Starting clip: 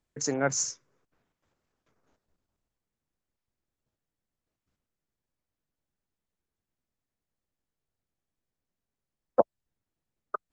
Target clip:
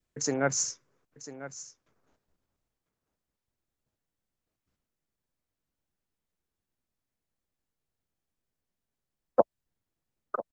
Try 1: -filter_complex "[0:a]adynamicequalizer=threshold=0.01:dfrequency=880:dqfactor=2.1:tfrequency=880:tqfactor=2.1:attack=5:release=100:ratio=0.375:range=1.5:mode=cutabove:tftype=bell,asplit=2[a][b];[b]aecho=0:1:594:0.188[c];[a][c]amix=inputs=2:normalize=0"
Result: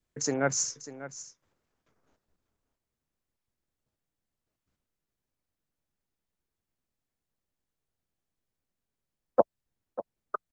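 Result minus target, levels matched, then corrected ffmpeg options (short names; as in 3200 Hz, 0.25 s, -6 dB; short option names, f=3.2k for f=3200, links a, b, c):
echo 0.402 s early
-filter_complex "[0:a]adynamicequalizer=threshold=0.01:dfrequency=880:dqfactor=2.1:tfrequency=880:tqfactor=2.1:attack=5:release=100:ratio=0.375:range=1.5:mode=cutabove:tftype=bell,asplit=2[a][b];[b]aecho=0:1:996:0.188[c];[a][c]amix=inputs=2:normalize=0"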